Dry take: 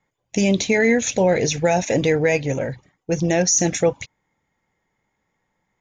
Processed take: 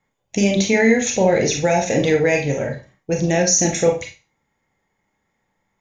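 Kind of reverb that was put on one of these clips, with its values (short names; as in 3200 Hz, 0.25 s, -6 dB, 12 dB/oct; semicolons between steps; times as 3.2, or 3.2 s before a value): Schroeder reverb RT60 0.31 s, combs from 28 ms, DRR 2.5 dB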